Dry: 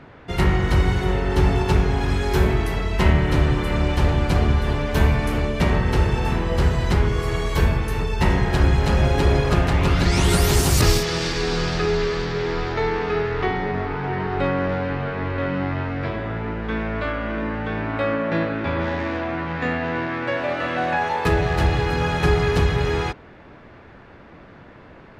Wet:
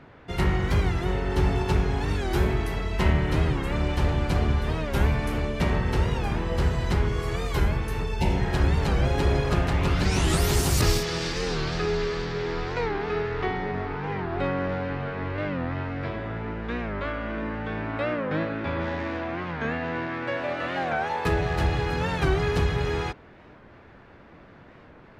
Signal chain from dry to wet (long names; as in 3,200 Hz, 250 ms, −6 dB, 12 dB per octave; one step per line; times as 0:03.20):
healed spectral selection 0:08.20–0:08.46, 970–2,000 Hz both
wow of a warped record 45 rpm, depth 160 cents
level −5 dB